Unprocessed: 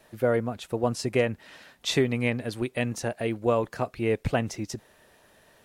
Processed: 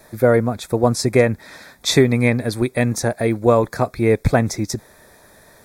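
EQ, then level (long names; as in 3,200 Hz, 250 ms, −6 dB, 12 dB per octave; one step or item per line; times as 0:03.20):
Butterworth band-reject 2,900 Hz, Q 3
low-shelf EQ 160 Hz +3.5 dB
high-shelf EQ 8,300 Hz +6 dB
+9.0 dB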